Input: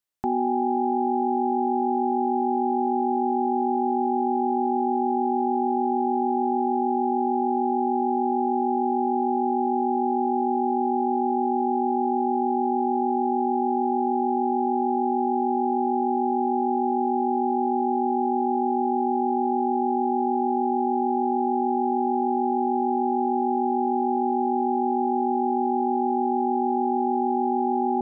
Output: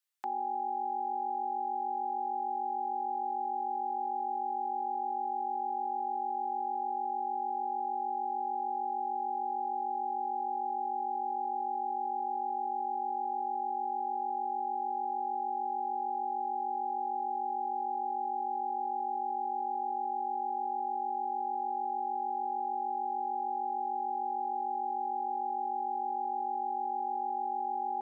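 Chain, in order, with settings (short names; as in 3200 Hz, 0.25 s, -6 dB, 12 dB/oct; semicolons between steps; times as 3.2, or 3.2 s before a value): HPF 1200 Hz 12 dB/oct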